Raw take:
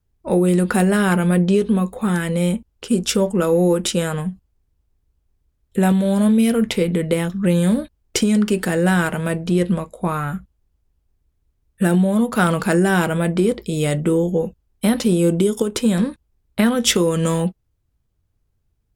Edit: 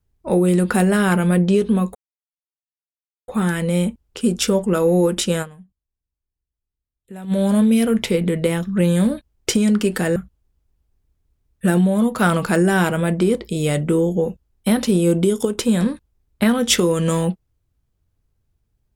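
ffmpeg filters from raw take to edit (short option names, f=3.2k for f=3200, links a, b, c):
-filter_complex "[0:a]asplit=5[a][b][c][d][e];[a]atrim=end=1.95,asetpts=PTS-STARTPTS,afade=t=out:st=1.946:d=0.004:c=hsin,apad=pad_dur=1.33[f];[b]atrim=start=1.95:end=4.32,asetpts=PTS-STARTPTS,afade=t=in:d=0.004:c=hsin,afade=t=out:st=2.14:d=0.23:c=exp:silence=0.112202[g];[c]atrim=start=4.32:end=5.76,asetpts=PTS-STARTPTS,volume=-19dB[h];[d]atrim=start=5.76:end=8.832,asetpts=PTS-STARTPTS,afade=t=in:d=0.23:c=exp:silence=0.112202[i];[e]atrim=start=10.328[j];[f][g][h][i]concat=n=4:v=0:a=1[k];[k][j]acrossfade=d=0.004:c1=hsin:c2=hsin"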